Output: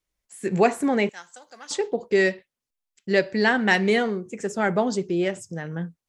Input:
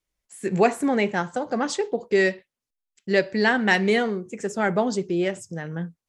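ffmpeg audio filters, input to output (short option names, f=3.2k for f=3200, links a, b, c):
-filter_complex "[0:a]asettb=1/sr,asplit=3[a][b][c];[a]atrim=end=1.094[d];[b]atrim=start=1.09:end=1.71,asetpts=PTS-STARTPTS,afade=t=in:d=0.004:c=qsin,afade=t=out:st=0.616:d=0.004:c=qsin,aderivative[e];[c]atrim=start=1.706[f];[d][e]acrossfade=d=0.004:c1=hsin:c2=qsin[g];[g][f]acrossfade=d=0.004:c1=qsin:c2=hsin"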